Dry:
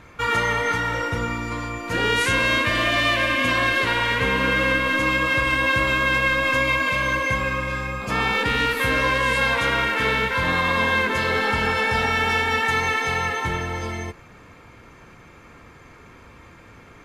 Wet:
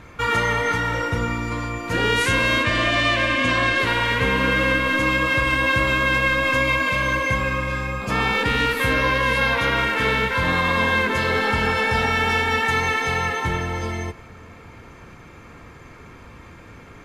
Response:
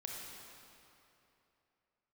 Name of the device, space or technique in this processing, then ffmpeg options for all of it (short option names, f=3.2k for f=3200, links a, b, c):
compressed reverb return: -filter_complex "[0:a]lowshelf=f=330:g=3,asettb=1/sr,asplit=3[a][b][c];[a]atrim=end=2.634[d];[b]atrim=start=2.63:end=3.8,asetpts=PTS-STARTPTS,afade=t=in:d=0.004:c=qsin,afade=t=out:st=1.166:d=0.004:c=qsin,lowpass=f=8.9k:w=0.5412,lowpass=f=8.9k:w=1.3066[e];[c]atrim=start=3.796[f];[d][e]acrossfade=d=0.004:c1=hsin:c2=qsin[g];[g][f]acrossfade=d=0.004:c1=qsin:c2=hsin,asplit=2[h][i];[1:a]atrim=start_sample=2205[j];[i][j]afir=irnorm=-1:irlink=0,acompressor=threshold=-36dB:ratio=6,volume=-7.5dB[k];[h][k]amix=inputs=2:normalize=0,asettb=1/sr,asplit=3[l][m][n];[l]atrim=end=8.934[o];[m]atrim=start=8.93:end=9.77,asetpts=PTS-STARTPTS,afade=t=in:d=0.004:c=qsin,afade=t=out:st=0.836:d=0.004:c=qsin,equalizer=f=7.9k:t=o:w=0.37:g=-9[p];[n]atrim=start=9.766[q];[o][p]acrossfade=d=0.004:c1=hsin:c2=qsin[r];[r][q]acrossfade=d=0.004:c1=qsin:c2=hsin"